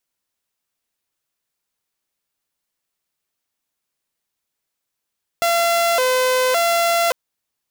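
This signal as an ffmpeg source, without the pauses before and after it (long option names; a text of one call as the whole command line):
ffmpeg -f lavfi -i "aevalsrc='0.237*(2*mod((596*t+86/0.89*(0.5-abs(mod(0.89*t,1)-0.5))),1)-1)':duration=1.7:sample_rate=44100" out.wav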